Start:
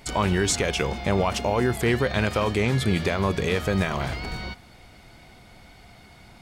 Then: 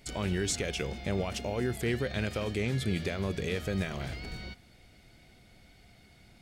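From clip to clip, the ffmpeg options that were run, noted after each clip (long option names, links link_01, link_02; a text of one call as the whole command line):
ffmpeg -i in.wav -af "equalizer=frequency=1000:width_type=o:width=0.83:gain=-10.5,volume=-7.5dB" out.wav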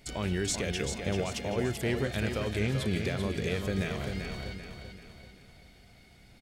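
ffmpeg -i in.wav -af "aecho=1:1:388|776|1164|1552|1940:0.473|0.213|0.0958|0.0431|0.0194" out.wav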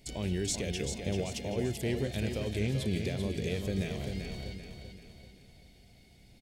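ffmpeg -i in.wav -af "equalizer=frequency=1300:width_type=o:width=1:gain=-13.5,volume=-1dB" out.wav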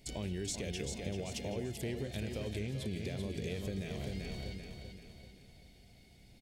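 ffmpeg -i in.wav -af "acompressor=threshold=-33dB:ratio=6,volume=-1.5dB" out.wav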